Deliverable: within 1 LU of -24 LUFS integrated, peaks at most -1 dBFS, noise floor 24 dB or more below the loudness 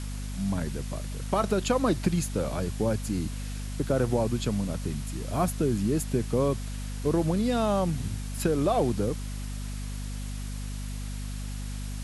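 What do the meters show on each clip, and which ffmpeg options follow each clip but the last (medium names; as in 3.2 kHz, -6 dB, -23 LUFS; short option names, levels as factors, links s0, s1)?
hum 50 Hz; highest harmonic 250 Hz; hum level -32 dBFS; noise floor -34 dBFS; noise floor target -54 dBFS; loudness -29.5 LUFS; peak level -12.5 dBFS; loudness target -24.0 LUFS
-> -af "bandreject=f=50:t=h:w=4,bandreject=f=100:t=h:w=4,bandreject=f=150:t=h:w=4,bandreject=f=200:t=h:w=4,bandreject=f=250:t=h:w=4"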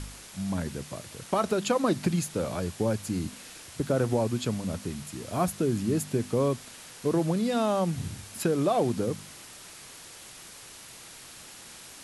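hum not found; noise floor -47 dBFS; noise floor target -53 dBFS
-> -af "afftdn=nr=6:nf=-47"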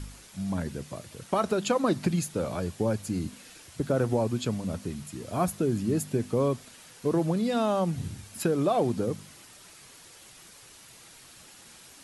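noise floor -52 dBFS; noise floor target -53 dBFS
-> -af "afftdn=nr=6:nf=-52"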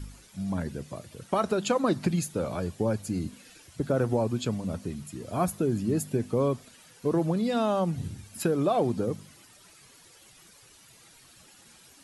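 noise floor -56 dBFS; loudness -29.0 LUFS; peak level -13.0 dBFS; loudness target -24.0 LUFS
-> -af "volume=1.78"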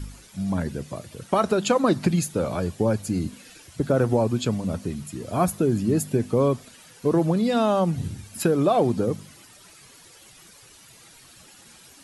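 loudness -24.0 LUFS; peak level -8.0 dBFS; noise floor -51 dBFS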